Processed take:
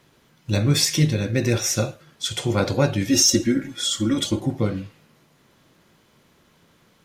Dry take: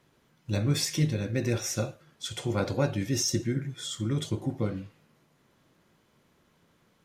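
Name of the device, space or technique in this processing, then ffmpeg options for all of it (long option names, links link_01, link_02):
presence and air boost: -filter_complex "[0:a]asettb=1/sr,asplit=3[link_01][link_02][link_03];[link_01]atrim=end=3.094[link_04];[link_02]atrim=start=3.09:end=4.4,asetpts=PTS-STARTPTS,afade=type=in:duration=0.004:curve=qsin,afade=type=out:start_time=1.306:duration=0.004:curve=qsin,aecho=1:1:3.6:0.91,atrim=end_sample=57771[link_05];[link_03]atrim=start=4.396[link_06];[link_04][link_05]acrossfade=duration=0.004:curve1=hsin:curve2=qsin[link_07];[link_07][link_06]acrossfade=duration=0.004:curve1=qsin:curve2=hsin,equalizer=frequency=4000:width_type=o:width=1.8:gain=3,highshelf=frequency=12000:gain=4,volume=7dB"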